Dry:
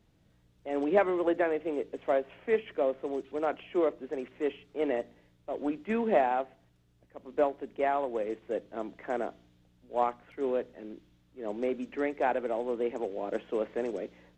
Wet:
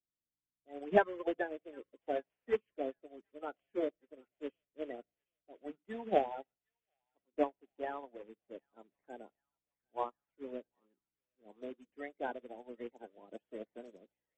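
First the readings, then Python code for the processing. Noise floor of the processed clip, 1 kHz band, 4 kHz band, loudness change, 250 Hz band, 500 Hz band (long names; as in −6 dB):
below −85 dBFS, −8.0 dB, can't be measured, −7.5 dB, −10.0 dB, −9.0 dB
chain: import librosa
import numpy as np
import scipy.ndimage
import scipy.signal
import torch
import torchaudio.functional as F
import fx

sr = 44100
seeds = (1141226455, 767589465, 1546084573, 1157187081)

y = fx.spec_quant(x, sr, step_db=30)
y = fx.echo_wet_highpass(y, sr, ms=758, feedback_pct=57, hz=1500.0, wet_db=-11)
y = fx.upward_expand(y, sr, threshold_db=-46.0, expansion=2.5)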